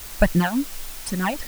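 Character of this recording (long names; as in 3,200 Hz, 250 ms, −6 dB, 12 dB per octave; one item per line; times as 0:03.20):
phaser sweep stages 12, 3.6 Hz, lowest notch 330–1,100 Hz
tremolo triangle 1.5 Hz, depth 85%
a quantiser's noise floor 8 bits, dither triangular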